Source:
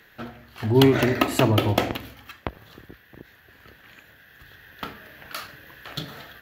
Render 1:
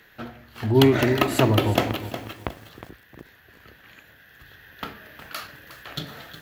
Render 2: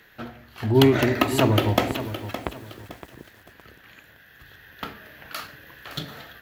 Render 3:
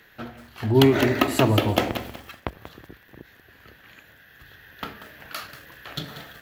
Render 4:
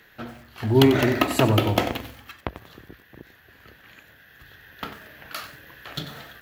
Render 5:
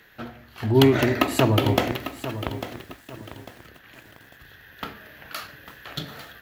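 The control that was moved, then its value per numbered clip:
feedback echo at a low word length, delay time: 362, 565, 187, 93, 848 milliseconds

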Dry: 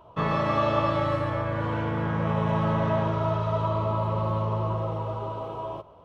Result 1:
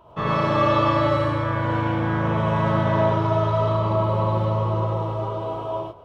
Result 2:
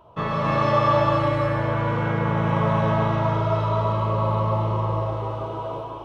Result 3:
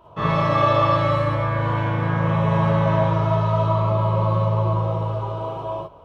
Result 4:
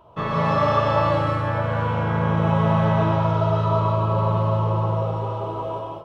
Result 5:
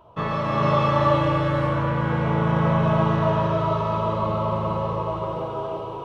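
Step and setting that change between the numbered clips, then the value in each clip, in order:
reverb whose tail is shaped and stops, gate: 130, 330, 80, 230, 530 milliseconds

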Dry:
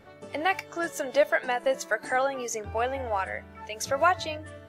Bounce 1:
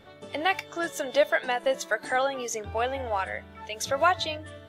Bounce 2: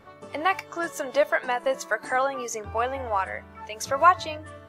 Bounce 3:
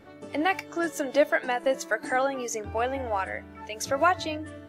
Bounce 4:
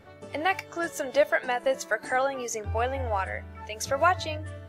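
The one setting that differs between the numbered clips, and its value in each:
parametric band, centre frequency: 3,500, 1,100, 300, 87 Hertz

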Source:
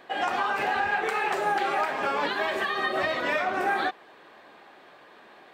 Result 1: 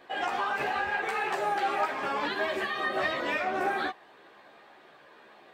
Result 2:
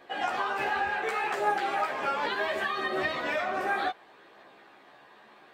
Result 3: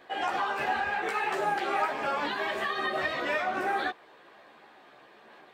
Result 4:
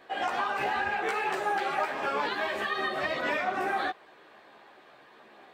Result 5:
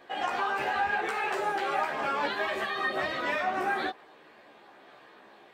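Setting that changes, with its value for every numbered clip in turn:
multi-voice chorus, speed: 0.82, 0.34, 1.4, 2.3, 0.5 Hertz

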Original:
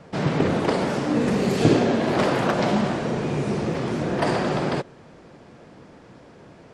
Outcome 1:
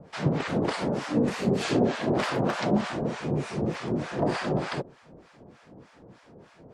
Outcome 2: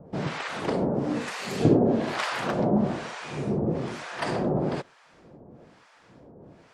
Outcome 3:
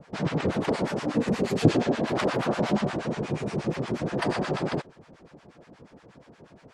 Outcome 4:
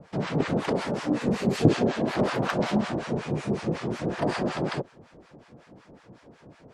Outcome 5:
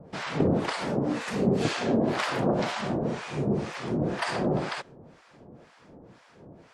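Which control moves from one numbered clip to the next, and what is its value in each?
two-band tremolo in antiphase, speed: 3.3, 1.1, 8.4, 5.4, 2 Hertz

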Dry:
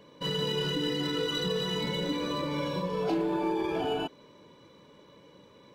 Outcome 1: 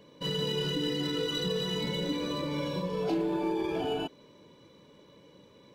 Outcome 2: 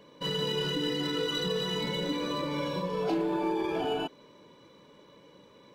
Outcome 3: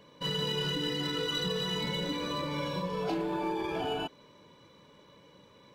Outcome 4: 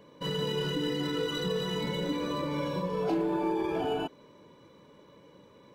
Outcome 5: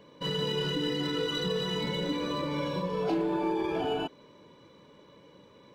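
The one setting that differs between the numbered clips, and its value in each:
parametric band, centre frequency: 1,200, 79, 350, 3,900, 15,000 Hertz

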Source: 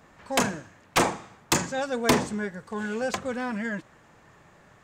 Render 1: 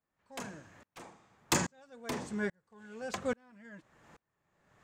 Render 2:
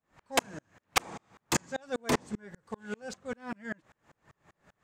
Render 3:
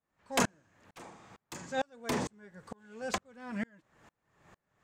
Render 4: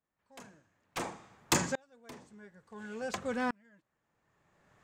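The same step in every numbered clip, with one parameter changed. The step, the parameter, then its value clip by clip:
tremolo with a ramp in dB, speed: 1.2, 5.1, 2.2, 0.57 Hertz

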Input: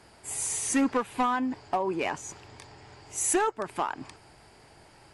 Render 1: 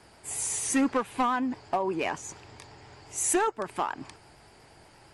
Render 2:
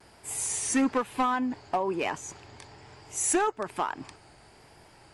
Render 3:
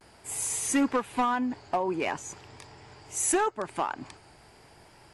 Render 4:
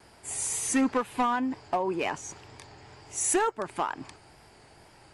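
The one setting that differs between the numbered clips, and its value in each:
pitch vibrato, speed: 8.5, 1.1, 0.46, 2.1 Hertz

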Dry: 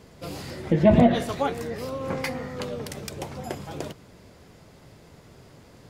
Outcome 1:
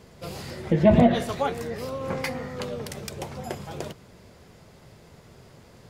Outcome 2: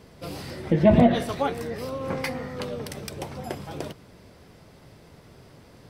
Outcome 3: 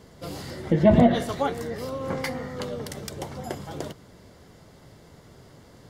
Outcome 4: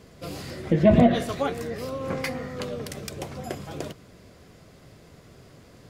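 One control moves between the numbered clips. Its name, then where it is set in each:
notch filter, centre frequency: 290, 6,900, 2,500, 880 Hertz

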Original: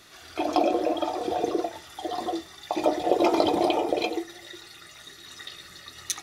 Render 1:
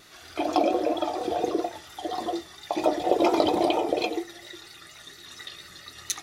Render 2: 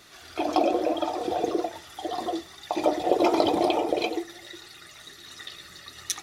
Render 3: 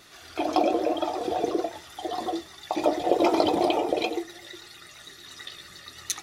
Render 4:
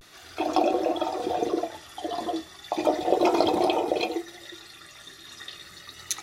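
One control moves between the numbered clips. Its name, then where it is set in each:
pitch vibrato, speed: 4.3, 16, 8.9, 0.35 Hertz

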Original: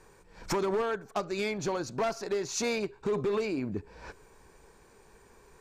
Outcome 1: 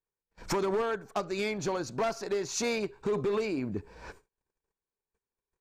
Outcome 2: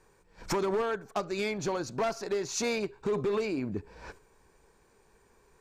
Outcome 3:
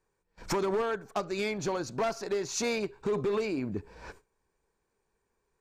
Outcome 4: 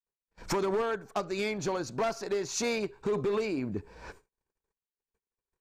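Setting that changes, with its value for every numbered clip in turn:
noise gate, range: −39, −6, −21, −57 decibels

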